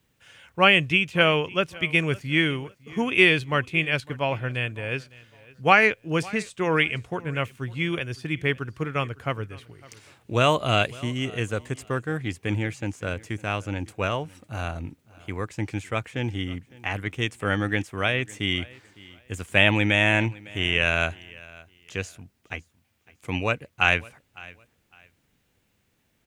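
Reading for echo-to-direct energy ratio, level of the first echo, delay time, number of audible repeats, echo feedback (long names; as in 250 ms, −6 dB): −21.5 dB, −22.0 dB, 556 ms, 2, 25%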